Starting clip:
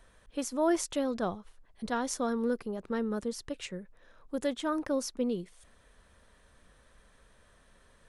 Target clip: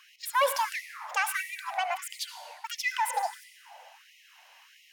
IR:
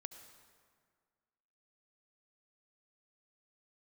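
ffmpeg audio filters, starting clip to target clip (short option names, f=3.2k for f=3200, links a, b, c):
-filter_complex "[0:a]asplit=2[a][b];[b]highpass=f=720:p=1,volume=14dB,asoftclip=type=tanh:threshold=-16dB[c];[a][c]amix=inputs=2:normalize=0,lowpass=f=3.2k:p=1,volume=-6dB,asetrate=72324,aresample=44100[d];[1:a]atrim=start_sample=2205[e];[d][e]afir=irnorm=-1:irlink=0,afftfilt=real='re*gte(b*sr/1024,470*pow(1900/470,0.5+0.5*sin(2*PI*1.5*pts/sr)))':imag='im*gte(b*sr/1024,470*pow(1900/470,0.5+0.5*sin(2*PI*1.5*pts/sr)))':win_size=1024:overlap=0.75,volume=7dB"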